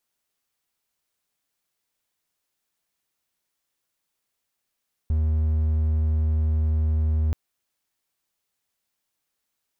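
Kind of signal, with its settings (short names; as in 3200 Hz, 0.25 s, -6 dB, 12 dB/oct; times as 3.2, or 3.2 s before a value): tone triangle 77.9 Hz -17 dBFS 2.23 s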